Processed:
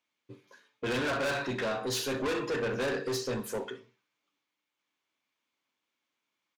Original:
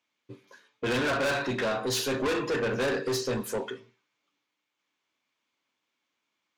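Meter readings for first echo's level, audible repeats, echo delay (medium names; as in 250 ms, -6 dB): -16.5 dB, 2, 64 ms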